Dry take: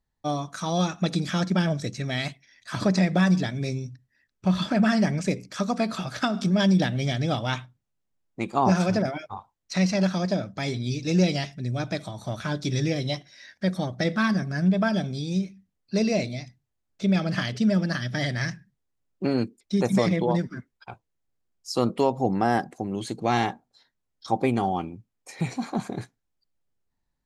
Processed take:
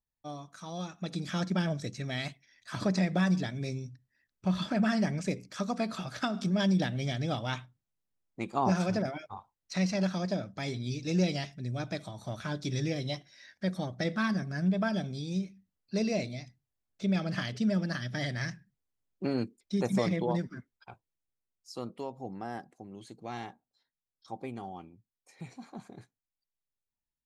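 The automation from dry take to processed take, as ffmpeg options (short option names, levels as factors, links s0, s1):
-af "volume=0.473,afade=t=in:st=0.97:d=0.41:silence=0.421697,afade=t=out:st=20.46:d=1.44:silence=0.316228"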